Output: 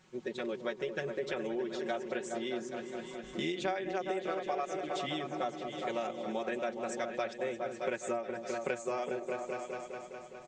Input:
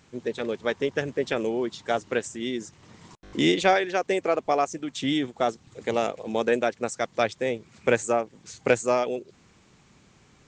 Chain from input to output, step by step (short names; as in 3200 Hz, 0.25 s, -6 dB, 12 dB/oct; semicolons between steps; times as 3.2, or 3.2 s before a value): comb 5.4 ms, depth 95%; on a send: repeats that get brighter 0.206 s, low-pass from 400 Hz, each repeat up 2 oct, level -6 dB; on the sum: compressor 4:1, threshold -25 dBFS, peak gain reduction 13.5 dB; tone controls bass -4 dB, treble -3 dB; gain -7 dB